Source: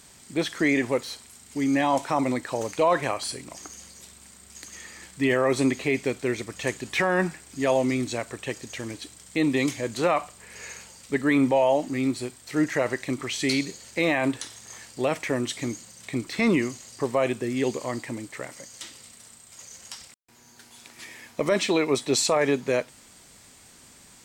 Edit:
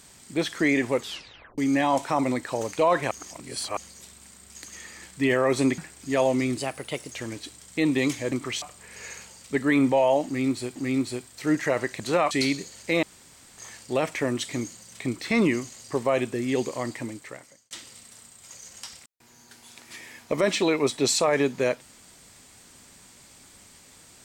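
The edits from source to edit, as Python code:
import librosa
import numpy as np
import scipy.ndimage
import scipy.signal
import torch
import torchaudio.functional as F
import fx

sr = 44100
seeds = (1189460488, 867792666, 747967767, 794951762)

y = fx.edit(x, sr, fx.tape_stop(start_s=0.98, length_s=0.6),
    fx.reverse_span(start_s=3.11, length_s=0.66),
    fx.cut(start_s=5.78, length_s=1.5),
    fx.speed_span(start_s=8.07, length_s=0.63, speed=1.15),
    fx.swap(start_s=9.9, length_s=0.31, other_s=13.09, other_length_s=0.3),
    fx.repeat(start_s=11.85, length_s=0.5, count=2),
    fx.room_tone_fill(start_s=14.11, length_s=0.55),
    fx.fade_out_span(start_s=18.12, length_s=0.67), tone=tone)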